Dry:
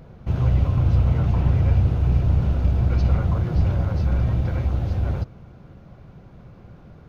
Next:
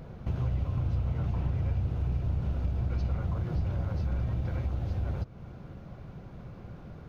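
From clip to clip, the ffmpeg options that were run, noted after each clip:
-af "acompressor=threshold=0.0251:ratio=2.5"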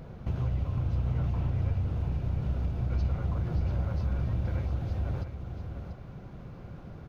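-af "aecho=1:1:689:0.376"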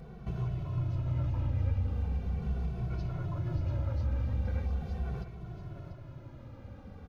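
-filter_complex "[0:a]asplit=2[s0][s1];[s1]adelay=2.2,afreqshift=-0.4[s2];[s0][s2]amix=inputs=2:normalize=1"

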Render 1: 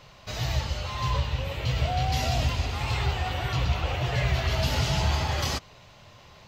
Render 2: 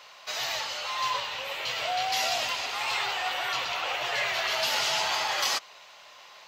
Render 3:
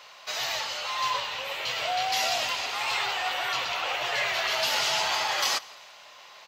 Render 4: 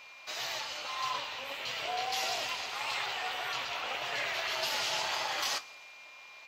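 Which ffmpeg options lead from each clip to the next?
-af "highpass=800,volume=1.68"
-af "aecho=1:1:169|338|507:0.0631|0.0322|0.0164,volume=1.12"
-af "flanger=delay=6:depth=8:regen=-61:speed=1.7:shape=triangular,aeval=exprs='val(0)+0.00398*sin(2*PI*2400*n/s)':c=same,tremolo=f=280:d=0.571"

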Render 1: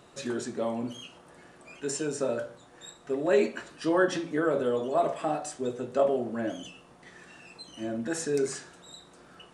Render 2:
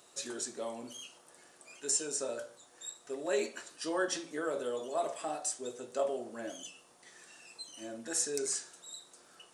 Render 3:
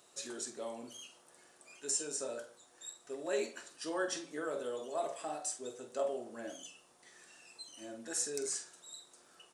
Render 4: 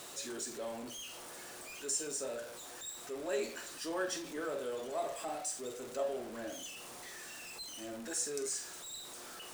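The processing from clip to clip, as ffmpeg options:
-af "bass=f=250:g=-12,treble=f=4000:g=14,volume=0.422"
-filter_complex "[0:a]asplit=2[s0][s1];[s1]adelay=47,volume=0.266[s2];[s0][s2]amix=inputs=2:normalize=0,volume=0.668"
-af "aeval=exprs='val(0)+0.5*0.00794*sgn(val(0))':c=same,volume=0.794"

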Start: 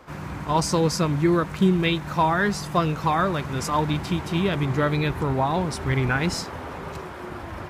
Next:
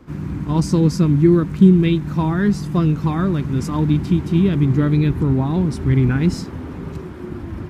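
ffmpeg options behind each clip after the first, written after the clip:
-af "lowshelf=f=420:t=q:w=1.5:g=12,volume=0.596"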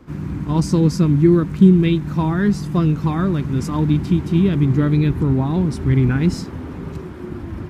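-af anull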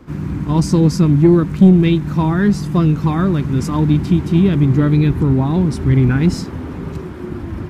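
-af "asoftclip=type=tanh:threshold=0.668,volume=1.5"

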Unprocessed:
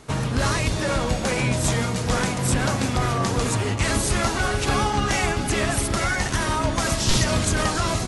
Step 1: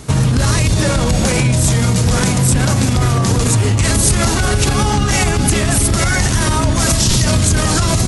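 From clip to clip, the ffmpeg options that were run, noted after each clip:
-af "equalizer=f=86:w=0.35:g=11,alimiter=limit=0.224:level=0:latency=1:release=45,highshelf=f=4400:g=11,volume=2.11"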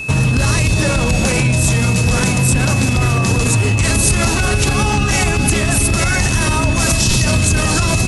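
-af "aeval=exprs='val(0)+0.0794*sin(2*PI*2600*n/s)':c=same,volume=0.891"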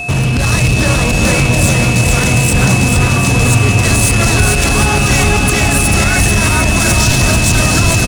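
-af "aeval=exprs='val(0)+0.0251*sin(2*PI*710*n/s)':c=same,volume=4.22,asoftclip=hard,volume=0.237,aecho=1:1:440|748|963.6|1115|1220:0.631|0.398|0.251|0.158|0.1,volume=1.41"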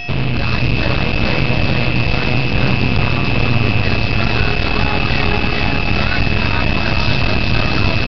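-af "aeval=exprs='max(val(0),0)':c=same,aresample=11025,aresample=44100"

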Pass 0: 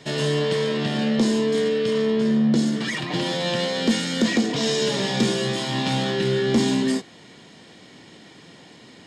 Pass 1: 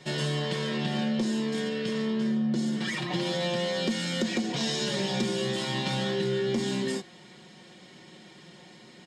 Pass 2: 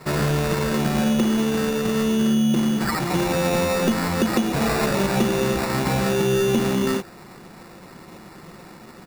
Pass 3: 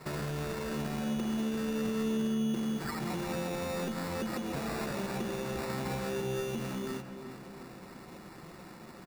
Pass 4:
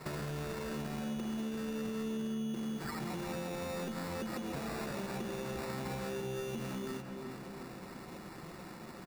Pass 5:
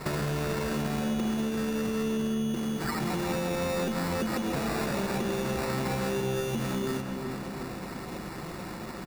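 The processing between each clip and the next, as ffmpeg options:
-af "aecho=1:1:5.5:0.67,acompressor=threshold=0.112:ratio=6,volume=0.531"
-af "acrusher=samples=14:mix=1:aa=0.000001,volume=2.51"
-filter_complex "[0:a]alimiter=limit=0.0891:level=0:latency=1:release=382,asplit=2[s0][s1];[s1]adelay=354,lowpass=f=2700:p=1,volume=0.376,asplit=2[s2][s3];[s3]adelay=354,lowpass=f=2700:p=1,volume=0.55,asplit=2[s4][s5];[s5]adelay=354,lowpass=f=2700:p=1,volume=0.55,asplit=2[s6][s7];[s7]adelay=354,lowpass=f=2700:p=1,volume=0.55,asplit=2[s8][s9];[s9]adelay=354,lowpass=f=2700:p=1,volume=0.55,asplit=2[s10][s11];[s11]adelay=354,lowpass=f=2700:p=1,volume=0.55,asplit=2[s12][s13];[s13]adelay=354,lowpass=f=2700:p=1,volume=0.55[s14];[s0][s2][s4][s6][s8][s10][s12][s14]amix=inputs=8:normalize=0,volume=0.447"
-af "acompressor=threshold=0.0112:ratio=2.5,volume=1.12"
-af "aeval=exprs='val(0)+0.00112*(sin(2*PI*50*n/s)+sin(2*PI*2*50*n/s)/2+sin(2*PI*3*50*n/s)/3+sin(2*PI*4*50*n/s)/4+sin(2*PI*5*50*n/s)/5)':c=same,aecho=1:1:248:0.237,volume=2.82"

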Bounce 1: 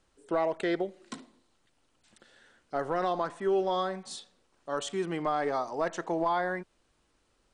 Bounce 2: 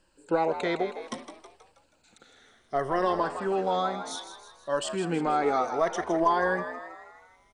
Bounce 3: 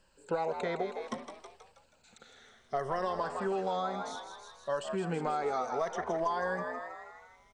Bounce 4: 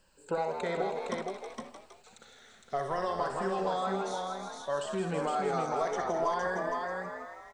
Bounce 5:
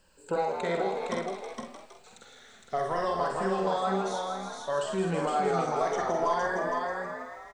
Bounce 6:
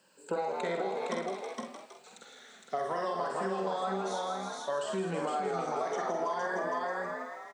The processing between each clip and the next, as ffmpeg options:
-filter_complex "[0:a]afftfilt=real='re*pow(10,11/40*sin(2*PI*(1.3*log(max(b,1)*sr/1024/100)/log(2)-(-0.62)*(pts-256)/sr)))':imag='im*pow(10,11/40*sin(2*PI*(1.3*log(max(b,1)*sr/1024/100)/log(2)-(-0.62)*(pts-256)/sr)))':win_size=1024:overlap=0.75,asplit=2[s0][s1];[s1]asplit=6[s2][s3][s4][s5][s6][s7];[s2]adelay=160,afreqshift=75,volume=0.299[s8];[s3]adelay=320,afreqshift=150,volume=0.155[s9];[s4]adelay=480,afreqshift=225,volume=0.0804[s10];[s5]adelay=640,afreqshift=300,volume=0.0422[s11];[s6]adelay=800,afreqshift=375,volume=0.0219[s12];[s7]adelay=960,afreqshift=450,volume=0.0114[s13];[s8][s9][s10][s11][s12][s13]amix=inputs=6:normalize=0[s14];[s0][s14]amix=inputs=2:normalize=0,volume=1.26"
-filter_complex "[0:a]superequalizer=6b=0.398:16b=0.501,acrossover=split=2000|4200[s0][s1][s2];[s0]acompressor=threshold=0.0316:ratio=4[s3];[s1]acompressor=threshold=0.00158:ratio=4[s4];[s2]acompressor=threshold=0.002:ratio=4[s5];[s3][s4][s5]amix=inputs=3:normalize=0"
-filter_complex "[0:a]highshelf=f=8700:g=7,asplit=2[s0][s1];[s1]aecho=0:1:63|462:0.398|0.631[s2];[s0][s2]amix=inputs=2:normalize=0"
-filter_complex "[0:a]asplit=2[s0][s1];[s1]adelay=47,volume=0.501[s2];[s0][s2]amix=inputs=2:normalize=0,volume=1.26"
-af "acompressor=threshold=0.0355:ratio=6,highpass=f=170:w=0.5412,highpass=f=170:w=1.3066"

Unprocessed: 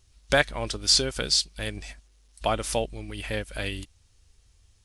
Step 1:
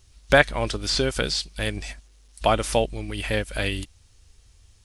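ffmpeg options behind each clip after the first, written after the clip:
-filter_complex "[0:a]acrossover=split=3000[s0][s1];[s1]acompressor=threshold=0.0224:ratio=4:attack=1:release=60[s2];[s0][s2]amix=inputs=2:normalize=0,volume=1.88"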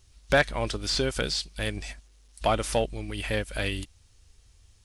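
-af "asoftclip=type=tanh:threshold=0.355,volume=0.708"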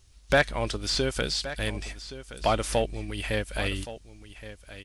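-af "aecho=1:1:1121:0.188"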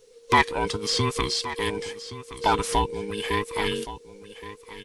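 -af "afftfilt=real='real(if(between(b,1,1008),(2*floor((b-1)/24)+1)*24-b,b),0)':imag='imag(if(between(b,1,1008),(2*floor((b-1)/24)+1)*24-b,b),0)*if(between(b,1,1008),-1,1)':win_size=2048:overlap=0.75,volume=1.33"

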